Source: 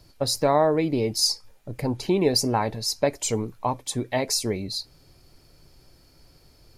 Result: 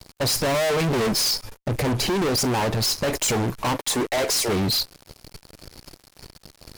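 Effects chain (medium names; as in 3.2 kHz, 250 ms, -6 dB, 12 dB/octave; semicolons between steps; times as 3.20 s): 0.54–1.25 s: comb 4.9 ms, depth 81%; 1.90–3.08 s: compression 3:1, threshold -25 dBFS, peak gain reduction 7.5 dB; 3.72–4.48 s: high-pass 150 Hz -> 580 Hz 24 dB/octave; fuzz box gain 41 dB, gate -50 dBFS; trim -7.5 dB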